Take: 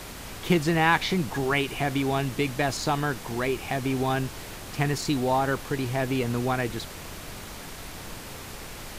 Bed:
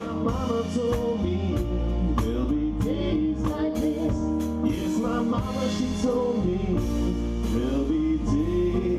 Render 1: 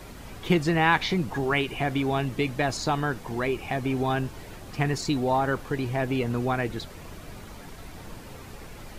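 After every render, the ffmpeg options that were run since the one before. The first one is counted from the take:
-af "afftdn=nr=9:nf=-40"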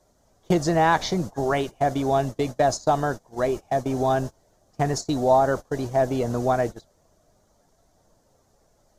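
-af "agate=range=-23dB:threshold=-29dB:ratio=16:detection=peak,equalizer=f=630:t=o:w=0.67:g=11,equalizer=f=2.5k:t=o:w=0.67:g=-12,equalizer=f=6.3k:t=o:w=0.67:g=11"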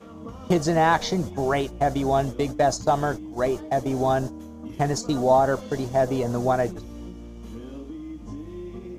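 -filter_complex "[1:a]volume=-13dB[a];[0:a][a]amix=inputs=2:normalize=0"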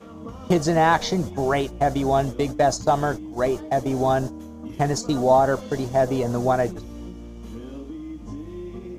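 -af "volume=1.5dB"

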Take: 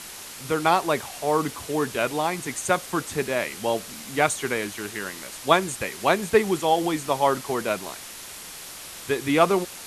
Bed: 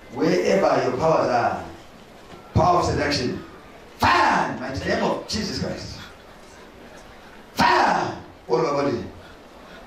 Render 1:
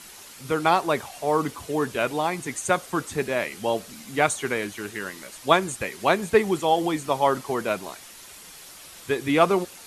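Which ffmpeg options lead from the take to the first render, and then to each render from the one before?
-af "afftdn=nr=7:nf=-40"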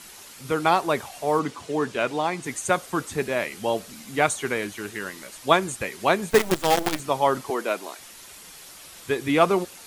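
-filter_complex "[0:a]asettb=1/sr,asplit=3[a][b][c];[a]atrim=end=1.394[d];[b]atrim=start=1.39:end=2.44,asetpts=PTS-STARTPTS,afade=t=in:d=0.004:c=qsin,afade=t=out:st=1.046:d=0.004:c=qsin,highpass=120,lowpass=7.7k[e];[c]atrim=start=2.436[f];[d][e]acrossfade=d=0.004:c1=hsin:c2=qsin[g];[g][f]acrossfade=d=0.004:c1=qsin:c2=hsin,asettb=1/sr,asplit=3[h][i][j];[h]atrim=end=6.314[k];[i]atrim=start=6.31:end=7,asetpts=PTS-STARTPTS,afade=t=in:d=0.004:c=qsin,afade=t=out:st=0.686:d=0.004:c=qsin,acrusher=bits=4:dc=4:mix=0:aa=0.000001[l];[j]atrim=start=6.996[m];[k][l]acrossfade=d=0.004:c1=hsin:c2=qsin[n];[n][m]acrossfade=d=0.004:c1=qsin:c2=hsin,asettb=1/sr,asplit=3[o][p][q];[o]atrim=end=7.504[r];[p]atrim=start=7.5:end=7.99,asetpts=PTS-STARTPTS,afade=t=in:d=0.004:c=qsin,afade=t=out:st=0.486:d=0.004:c=qsin,highpass=f=250:w=0.5412,highpass=f=250:w=1.3066[s];[q]atrim=start=7.986[t];[r][s]acrossfade=d=0.004:c1=hsin:c2=qsin[u];[u][t]acrossfade=d=0.004:c1=qsin:c2=hsin"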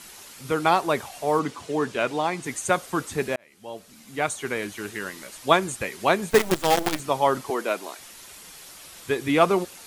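-filter_complex "[0:a]asplit=2[a][b];[a]atrim=end=3.36,asetpts=PTS-STARTPTS,afade=t=out:st=3.356:d=0.004:c=hsin[c];[b]atrim=start=3.36,asetpts=PTS-STARTPTS,afade=t=in:d=1.47[d];[c][d]concat=n=2:v=0:a=1"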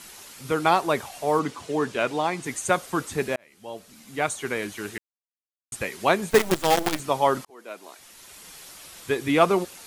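-filter_complex "[0:a]asplit=4[a][b][c][d];[a]atrim=end=4.98,asetpts=PTS-STARTPTS,afade=t=out:st=4.976:d=0.004:c=hsin[e];[b]atrim=start=4.98:end=5.72,asetpts=PTS-STARTPTS,volume=0[f];[c]atrim=start=5.72:end=7.45,asetpts=PTS-STARTPTS,afade=t=in:d=0.004:c=hsin,afade=t=out:st=1.726:d=0.004:c=hsin[g];[d]atrim=start=7.45,asetpts=PTS-STARTPTS,afade=t=in:d=1.08[h];[e][f][g][h]concat=n=4:v=0:a=1"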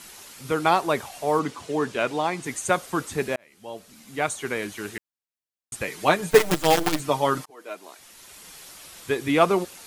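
-filter_complex "[0:a]asettb=1/sr,asplit=3[a][b][c];[a]atrim=end=5.874[d];[b]atrim=start=5.87:end=7.75,asetpts=PTS-STARTPTS,afade=t=in:d=0.004:c=qsin,afade=t=out:st=1.876:d=0.004:c=qsin,aecho=1:1:6.6:0.63,atrim=end_sample=82908[e];[c]atrim=start=7.746[f];[d][e]acrossfade=d=0.004:c1=hsin:c2=qsin[g];[g][f]acrossfade=d=0.004:c1=qsin:c2=hsin"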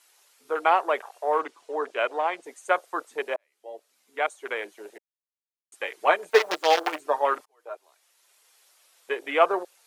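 -af "afwtdn=0.0251,highpass=f=450:w=0.5412,highpass=f=450:w=1.3066"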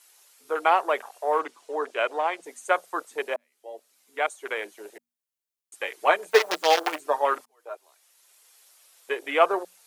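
-af "highshelf=f=6.3k:g=7,bandreject=f=60:t=h:w=6,bandreject=f=120:t=h:w=6,bandreject=f=180:t=h:w=6,bandreject=f=240:t=h:w=6"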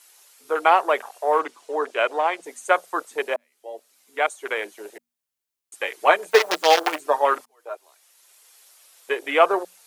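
-af "volume=4dB,alimiter=limit=-2dB:level=0:latency=1"

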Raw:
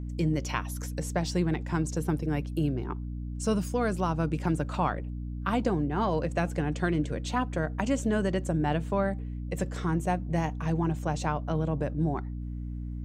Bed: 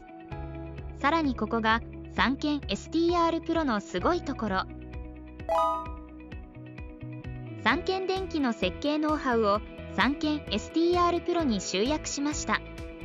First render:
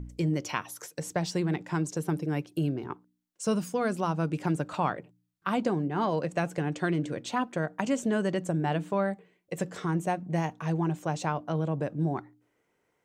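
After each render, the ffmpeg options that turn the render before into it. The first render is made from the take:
-af "bandreject=f=60:t=h:w=4,bandreject=f=120:t=h:w=4,bandreject=f=180:t=h:w=4,bandreject=f=240:t=h:w=4,bandreject=f=300:t=h:w=4"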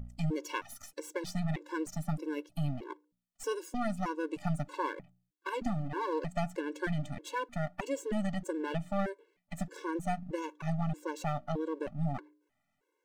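-af "aeval=exprs='if(lt(val(0),0),0.251*val(0),val(0))':c=same,afftfilt=real='re*gt(sin(2*PI*1.6*pts/sr)*(1-2*mod(floor(b*sr/1024/290),2)),0)':imag='im*gt(sin(2*PI*1.6*pts/sr)*(1-2*mod(floor(b*sr/1024/290),2)),0)':win_size=1024:overlap=0.75"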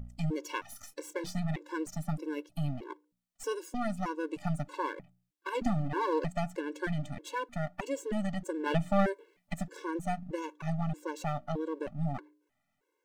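-filter_complex "[0:a]asettb=1/sr,asplit=3[a][b][c];[a]atrim=end=0.644[d];[b]atrim=start=0.64:end=1.39,asetpts=PTS-STARTPTS,afade=t=in:d=0.004:c=qsin,afade=t=out:st=0.746:d=0.004:c=qsin,asplit=2[e][f];[f]adelay=27,volume=-12dB[g];[e][g]amix=inputs=2:normalize=0,atrim=end_sample=33075[h];[c]atrim=start=1.386[i];[d][h]acrossfade=d=0.004:c1=hsin:c2=qsin[j];[j][i]acrossfade=d=0.004:c1=qsin:c2=hsin,asplit=5[k][l][m][n][o];[k]atrim=end=5.552[p];[l]atrim=start=5.548:end=6.322,asetpts=PTS-STARTPTS,volume=3.5dB[q];[m]atrim=start=6.318:end=8.662[r];[n]atrim=start=8.658:end=9.542,asetpts=PTS-STARTPTS,volume=6dB[s];[o]atrim=start=9.538[t];[p][q]acrossfade=d=0.004:c1=hsin:c2=hsin[u];[u][r]acrossfade=d=0.004:c1=hsin:c2=hsin[v];[v][s]acrossfade=d=0.004:c1=hsin:c2=hsin[w];[w][t]acrossfade=d=0.004:c1=hsin:c2=hsin"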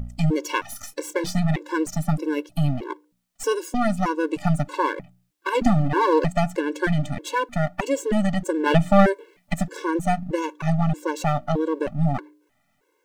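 -af "volume=11.5dB"

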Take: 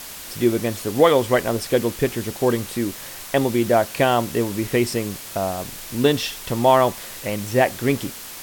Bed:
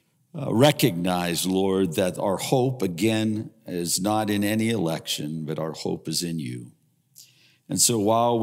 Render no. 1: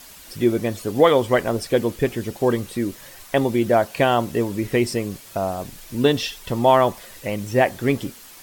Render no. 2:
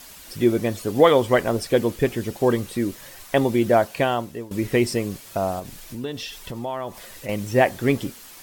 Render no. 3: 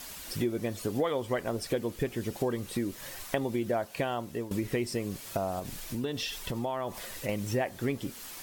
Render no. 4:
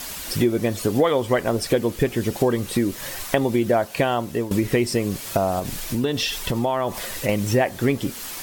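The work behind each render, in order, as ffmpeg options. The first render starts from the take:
-af "afftdn=nr=9:nf=-36"
-filter_complex "[0:a]asettb=1/sr,asplit=3[a][b][c];[a]atrim=end=5.594[d];[b]atrim=start=5.59:end=7.29,asetpts=PTS-STARTPTS,afade=t=in:d=0.004:c=qsin,afade=t=out:st=1.696:d=0.004:c=qsin,acompressor=threshold=-32dB:ratio=2.5:attack=3.2:release=140:knee=1:detection=peak[e];[c]atrim=start=7.286[f];[d][e]acrossfade=d=0.004:c1=hsin:c2=qsin[g];[g][f]acrossfade=d=0.004:c1=qsin:c2=hsin,asplit=2[h][i];[h]atrim=end=4.51,asetpts=PTS-STARTPTS,afade=t=out:st=3.78:d=0.73:silence=0.133352[j];[i]atrim=start=4.51,asetpts=PTS-STARTPTS,afade=t=in:d=0.004:c=hsin:silence=0.133352[k];[j][k]concat=n=2:v=0:a=1"
-af "acompressor=threshold=-29dB:ratio=4"
-af "volume=10.5dB,alimiter=limit=-3dB:level=0:latency=1"

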